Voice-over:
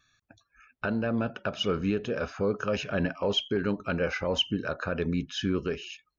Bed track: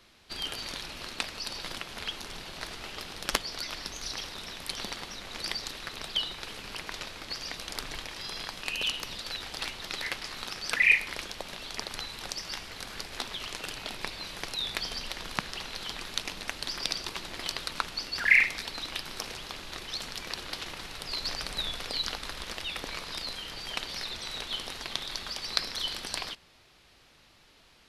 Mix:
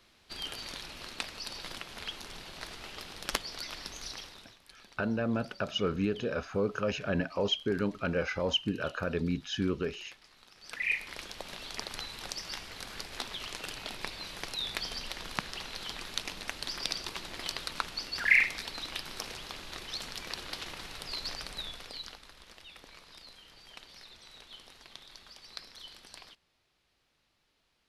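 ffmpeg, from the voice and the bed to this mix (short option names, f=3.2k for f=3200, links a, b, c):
-filter_complex "[0:a]adelay=4150,volume=-2.5dB[a];[1:a]volume=14dB,afade=t=out:st=4.01:d=0.58:silence=0.149624,afade=t=in:st=10.53:d=1:silence=0.125893,afade=t=out:st=20.95:d=1.31:silence=0.223872[b];[a][b]amix=inputs=2:normalize=0"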